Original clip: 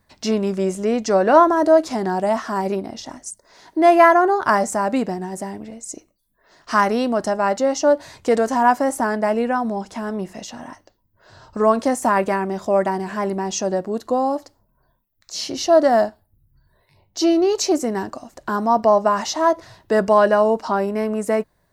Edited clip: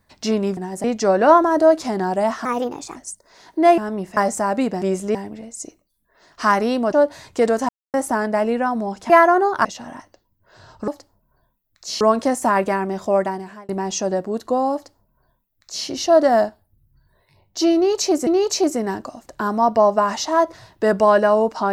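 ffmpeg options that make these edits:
-filter_complex "[0:a]asplit=18[s0][s1][s2][s3][s4][s5][s6][s7][s8][s9][s10][s11][s12][s13][s14][s15][s16][s17];[s0]atrim=end=0.572[s18];[s1]atrim=start=5.168:end=5.442[s19];[s2]atrim=start=0.898:end=2.514[s20];[s3]atrim=start=2.51:end=3.15,asetpts=PTS-STARTPTS,asetrate=55566,aresample=44100[s21];[s4]atrim=start=3.146:end=3.972[s22];[s5]atrim=start=9.988:end=10.382[s23];[s6]atrim=start=4.518:end=5.172[s24];[s7]atrim=start=0.568:end=0.902[s25];[s8]atrim=start=5.438:end=7.222[s26];[s9]atrim=start=7.818:end=8.58,asetpts=PTS-STARTPTS,afade=t=out:st=0.758:d=0.004:c=hsin[s27];[s10]atrim=start=8.58:end=8.83,asetpts=PTS-STARTPTS,volume=0[s28];[s11]atrim=start=8.83:end=9.992,asetpts=PTS-STARTPTS,afade=t=in:d=0.004:c=hsin[s29];[s12]atrim=start=3.968:end=4.522[s30];[s13]atrim=start=10.378:end=11.612[s31];[s14]atrim=start=14.338:end=15.472[s32];[s15]atrim=start=11.608:end=13.29,asetpts=PTS-STARTPTS,afade=t=out:st=1.142:d=0.54[s33];[s16]atrim=start=13.29:end=17.872,asetpts=PTS-STARTPTS,afade=t=in:d=0.004:c=hsin[s34];[s17]atrim=start=17.348[s35];[s18][s19]acrossfade=d=0.004:c1=hsin:c2=hsin[s36];[s36][s20]acrossfade=d=0.004:c1=hsin:c2=hsin[s37];[s37][s21]acrossfade=d=0.004:c1=hsin:c2=hsin[s38];[s38][s22]acrossfade=d=0.004:c1=hsin:c2=hsin[s39];[s39][s23]acrossfade=d=0.004:c1=hsin:c2=hsin[s40];[s40][s24]acrossfade=d=0.004:c1=hsin:c2=hsin[s41];[s41][s25]acrossfade=d=0.004:c1=hsin:c2=hsin[s42];[s42][s26]acrossfade=d=0.004:c1=hsin:c2=hsin[s43];[s27][s28][s29]concat=n=3:v=0:a=1[s44];[s43][s44]acrossfade=d=0.004:c1=hsin:c2=hsin[s45];[s45][s30]acrossfade=d=0.004:c1=hsin:c2=hsin[s46];[s46][s31]acrossfade=d=0.004:c1=hsin:c2=hsin[s47];[s47][s32]acrossfade=d=0.004:c1=hsin:c2=hsin[s48];[s33][s34]concat=n=2:v=0:a=1[s49];[s48][s49]acrossfade=d=0.004:c1=hsin:c2=hsin[s50];[s50][s35]acrossfade=d=0.004:c1=hsin:c2=hsin"

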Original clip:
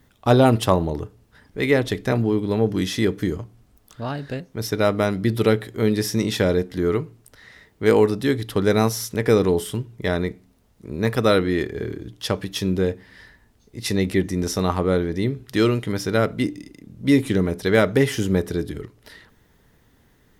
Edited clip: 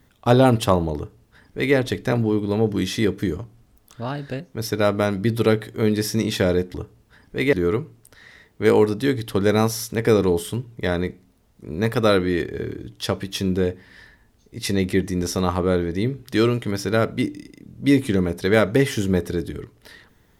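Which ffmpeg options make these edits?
-filter_complex "[0:a]asplit=3[s0][s1][s2];[s0]atrim=end=6.742[s3];[s1]atrim=start=0.958:end=1.752[s4];[s2]atrim=start=6.738[s5];[s3][s4]acrossfade=d=0.004:c1=hsin:c2=hsin[s6];[s6][s5]acrossfade=d=0.004:c1=hsin:c2=hsin"

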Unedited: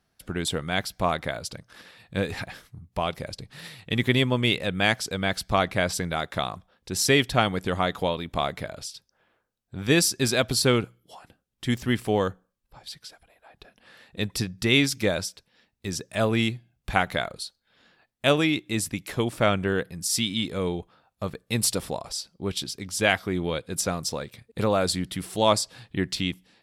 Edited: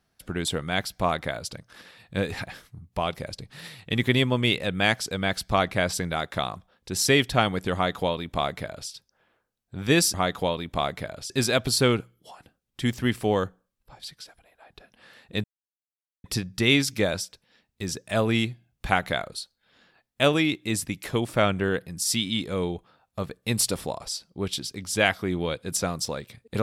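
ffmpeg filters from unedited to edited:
-filter_complex "[0:a]asplit=4[s0][s1][s2][s3];[s0]atrim=end=10.142[s4];[s1]atrim=start=7.738:end=8.902[s5];[s2]atrim=start=10.138:end=14.28,asetpts=PTS-STARTPTS,afade=t=out:st=4.138:d=0.004:c=hsin,apad=pad_dur=0.8[s6];[s3]atrim=start=14.28,asetpts=PTS-STARTPTS,afade=t=in:d=0.004:c=hsin[s7];[s4][s5]acrossfade=d=0.004:c1=hsin:c2=hsin[s8];[s6][s7]concat=n=2:v=0:a=1[s9];[s8][s9]acrossfade=d=0.004:c1=hsin:c2=hsin"

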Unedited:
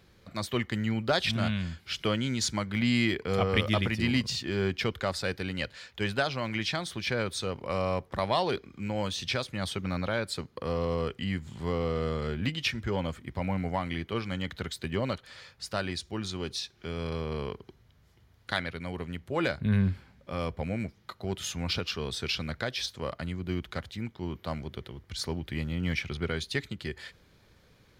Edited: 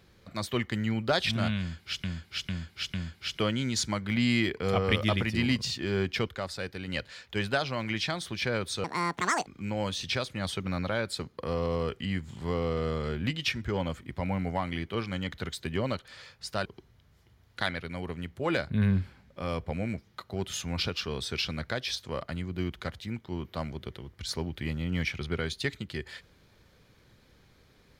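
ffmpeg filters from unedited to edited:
-filter_complex "[0:a]asplit=9[s0][s1][s2][s3][s4][s5][s6][s7][s8];[s0]atrim=end=2.042[s9];[s1]atrim=start=1.588:end=2.042[s10];[s2]atrim=start=1.588:end=2.042[s11];[s3]atrim=start=1.588:end=4.942[s12];[s4]atrim=start=4.938:end=5.532,asetpts=PTS-STARTPTS,volume=0.596[s13];[s5]atrim=start=5.528:end=7.494[s14];[s6]atrim=start=7.49:end=8.65,asetpts=PTS-STARTPTS,asetrate=82026,aresample=44100,atrim=end_sample=27503,asetpts=PTS-STARTPTS[s15];[s7]atrim=start=8.646:end=15.842[s16];[s8]atrim=start=17.558[s17];[s9][s10]acrossfade=d=0.004:c1=hsin:c2=hsin[s18];[s18][s11]acrossfade=d=0.004:c1=hsin:c2=hsin[s19];[s19][s12]acrossfade=d=0.004:c1=hsin:c2=hsin[s20];[s20][s13]acrossfade=d=0.004:c1=hsin:c2=hsin[s21];[s21][s14]acrossfade=d=0.004:c1=hsin:c2=hsin[s22];[s22][s15]acrossfade=d=0.004:c1=hsin:c2=hsin[s23];[s23][s16]acrossfade=d=0.004:c1=hsin:c2=hsin[s24];[s24][s17]acrossfade=d=0.004:c1=hsin:c2=hsin"

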